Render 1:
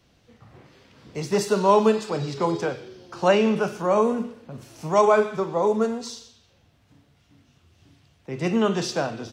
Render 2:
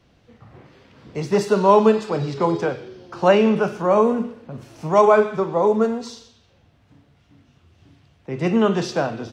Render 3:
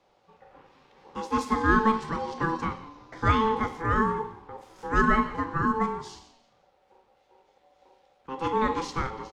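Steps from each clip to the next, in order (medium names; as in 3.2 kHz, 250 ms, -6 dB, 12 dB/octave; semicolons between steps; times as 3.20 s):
treble shelf 4.4 kHz -10.5 dB; trim +4 dB
ring modulator 660 Hz; frequency-shifting echo 172 ms, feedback 34%, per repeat -66 Hz, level -20.5 dB; trim -5 dB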